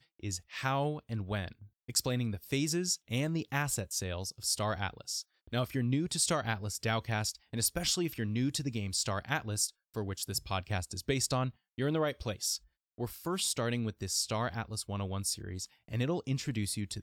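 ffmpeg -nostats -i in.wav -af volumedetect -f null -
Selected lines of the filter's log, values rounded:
mean_volume: -34.6 dB
max_volume: -15.1 dB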